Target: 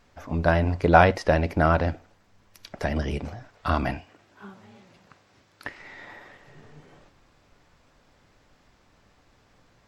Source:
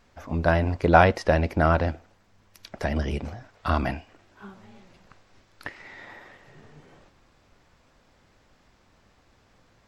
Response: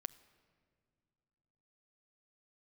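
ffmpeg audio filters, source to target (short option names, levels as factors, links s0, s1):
-filter_complex "[0:a]asettb=1/sr,asplit=3[s0][s1][s2];[s0]atrim=end=3.974[s3];[s1]atrim=start=3.97:end=5.67,asetpts=PTS-STARTPTS,afade=t=in:d=0.004:c=qsin,afade=t=out:st=1.696:d=0.004:c=qsin,highpass=79[s4];[s2]atrim=start=5.666[s5];[s3][s4]acrossfade=d=0.004:c1=hsin:c2=qsin[s6];[s6][s5]acrossfade=d=0.004:c1=qsin:c2=hsin[s7];[1:a]atrim=start_sample=2205,atrim=end_sample=3087[s8];[s7][s8]afir=irnorm=-1:irlink=0,volume=1.5"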